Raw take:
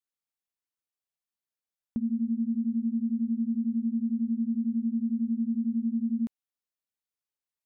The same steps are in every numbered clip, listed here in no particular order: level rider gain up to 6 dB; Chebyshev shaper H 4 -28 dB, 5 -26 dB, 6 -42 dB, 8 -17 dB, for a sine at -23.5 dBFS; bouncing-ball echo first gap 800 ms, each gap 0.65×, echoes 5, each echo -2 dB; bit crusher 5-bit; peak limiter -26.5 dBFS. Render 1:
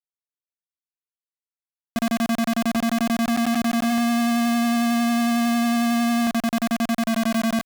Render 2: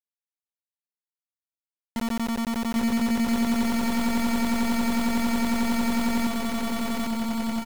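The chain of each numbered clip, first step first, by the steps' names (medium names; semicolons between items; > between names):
bouncing-ball echo > peak limiter > bit crusher > Chebyshev shaper > level rider; level rider > peak limiter > Chebyshev shaper > bit crusher > bouncing-ball echo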